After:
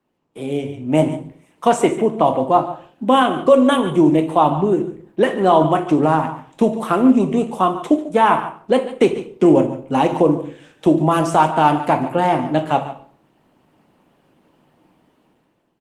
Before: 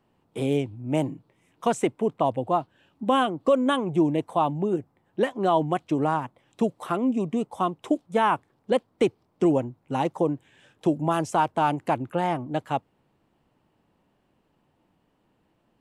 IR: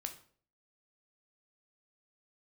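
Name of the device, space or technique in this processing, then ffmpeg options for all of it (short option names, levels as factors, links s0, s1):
far-field microphone of a smart speaker: -filter_complex "[0:a]asplit=3[s0][s1][s2];[s0]afade=t=out:st=3.5:d=0.02[s3];[s1]highshelf=f=7700:g=5.5,afade=t=in:st=3.5:d=0.02,afade=t=out:st=4.21:d=0.02[s4];[s2]afade=t=in:st=4.21:d=0.02[s5];[s3][s4][s5]amix=inputs=3:normalize=0,aecho=1:1:144:0.211[s6];[1:a]atrim=start_sample=2205[s7];[s6][s7]afir=irnorm=-1:irlink=0,highpass=140,dynaudnorm=f=210:g=7:m=5.62" -ar 48000 -c:a libopus -b:a 20k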